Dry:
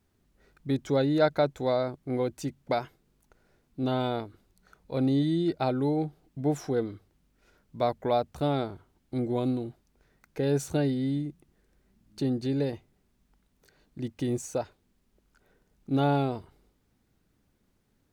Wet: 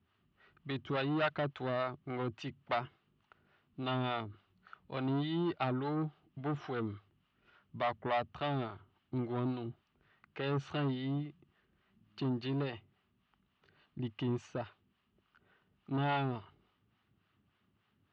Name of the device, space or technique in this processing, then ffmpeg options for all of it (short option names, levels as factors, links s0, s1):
guitar amplifier with harmonic tremolo: -filter_complex "[0:a]acrossover=split=500[s0][s1];[s0]aeval=exprs='val(0)*(1-0.7/2+0.7/2*cos(2*PI*3.5*n/s))':c=same[s2];[s1]aeval=exprs='val(0)*(1-0.7/2-0.7/2*cos(2*PI*3.5*n/s))':c=same[s3];[s2][s3]amix=inputs=2:normalize=0,asoftclip=type=tanh:threshold=0.0473,highpass=97,equalizer=f=100:t=q:w=4:g=6,equalizer=f=280:t=q:w=4:g=-4,equalizer=f=500:t=q:w=4:g=-8,equalizer=f=1200:t=q:w=4:g=9,equalizer=f=1800:t=q:w=4:g=3,equalizer=f=2900:t=q:w=4:g=10,lowpass=f=3900:w=0.5412,lowpass=f=3900:w=1.3066"